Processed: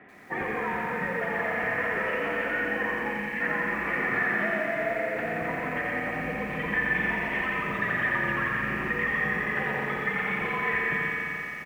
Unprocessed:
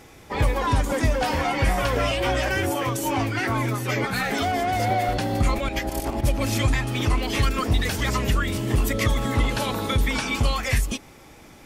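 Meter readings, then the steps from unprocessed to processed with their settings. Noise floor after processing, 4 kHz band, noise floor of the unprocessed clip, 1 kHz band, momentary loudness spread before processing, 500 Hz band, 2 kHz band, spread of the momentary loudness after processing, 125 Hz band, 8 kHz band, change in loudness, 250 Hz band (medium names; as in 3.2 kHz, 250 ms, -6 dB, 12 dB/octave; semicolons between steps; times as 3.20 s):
-34 dBFS, -15.0 dB, -47 dBFS, -5.5 dB, 3 LU, -4.5 dB, +3.5 dB, 5 LU, -15.0 dB, under -20 dB, -3.5 dB, -7.0 dB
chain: rattle on loud lows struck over -31 dBFS, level -25 dBFS; delay 126 ms -6 dB; spring tank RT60 3.1 s, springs 43/56 ms, chirp 55 ms, DRR 3.5 dB; mistuned SSB -68 Hz 210–2600 Hz; compression 4:1, threshold -26 dBFS, peak gain reduction 8.5 dB; spectral selection erased 3.13–3.41 s, 300–1600 Hz; peaking EQ 1.8 kHz +13 dB 0.21 oct; bit-crushed delay 87 ms, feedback 80%, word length 9-bit, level -4.5 dB; trim -4 dB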